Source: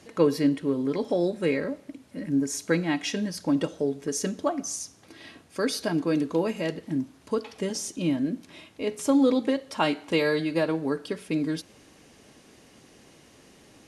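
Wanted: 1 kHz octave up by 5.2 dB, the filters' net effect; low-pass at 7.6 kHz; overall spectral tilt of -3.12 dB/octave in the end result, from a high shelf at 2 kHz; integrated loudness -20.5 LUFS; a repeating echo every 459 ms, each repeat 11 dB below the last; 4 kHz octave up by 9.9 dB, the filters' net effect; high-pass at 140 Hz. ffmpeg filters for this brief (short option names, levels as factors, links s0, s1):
-af "highpass=140,lowpass=7600,equalizer=f=1000:t=o:g=4.5,highshelf=f=2000:g=7,equalizer=f=4000:t=o:g=6,aecho=1:1:459|918|1377:0.282|0.0789|0.0221,volume=1.68"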